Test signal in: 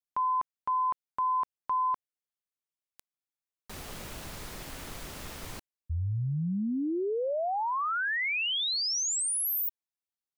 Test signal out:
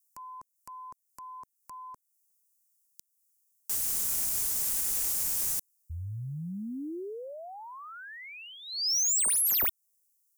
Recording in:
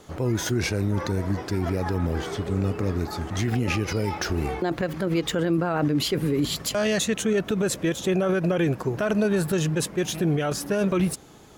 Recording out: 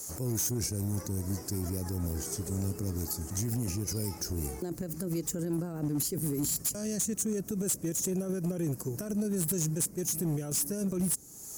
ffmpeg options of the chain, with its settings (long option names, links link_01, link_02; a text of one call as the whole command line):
ffmpeg -i in.wav -filter_complex "[0:a]acrossover=split=390[link_01][link_02];[link_02]acompressor=threshold=-36dB:ratio=10:attack=0.1:release=716:knee=2.83:detection=peak[link_03];[link_01][link_03]amix=inputs=2:normalize=0,aexciter=amount=14.5:drive=8.3:freq=5400,asoftclip=type=hard:threshold=-19dB,volume=-6.5dB" out.wav